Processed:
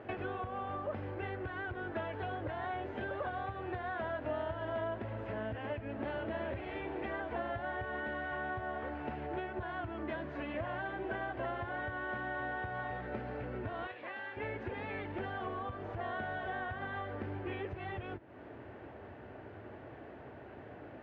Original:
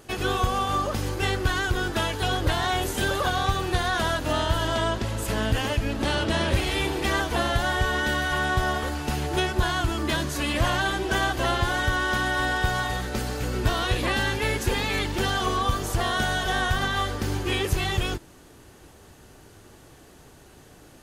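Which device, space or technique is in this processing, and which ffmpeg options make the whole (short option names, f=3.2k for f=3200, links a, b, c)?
bass amplifier: -filter_complex "[0:a]acompressor=threshold=-39dB:ratio=5,highpass=f=75:w=0.5412,highpass=f=75:w=1.3066,equalizer=f=76:t=q:w=4:g=-4,equalizer=f=160:t=q:w=4:g=-9,equalizer=f=630:t=q:w=4:g=6,equalizer=f=1.2k:t=q:w=4:g=-4,lowpass=f=2.2k:w=0.5412,lowpass=f=2.2k:w=1.3066,asettb=1/sr,asplit=3[a][b][c];[a]atrim=end=13.874[d];[b]atrim=start=13.87:end=14.37,asetpts=PTS-STARTPTS,afade=t=in:d=0.004:c=qsin,afade=t=out:st=0.496:d=0.004:c=qsin,highpass=f=1k:p=1[e];[c]atrim=start=14.366[f];[d][e]acrossfade=d=0.004:c1=hsin:c2=qsin[g];[g][f]acrossfade=d=0.004:c1=qsin:c2=hsin,volume=2dB"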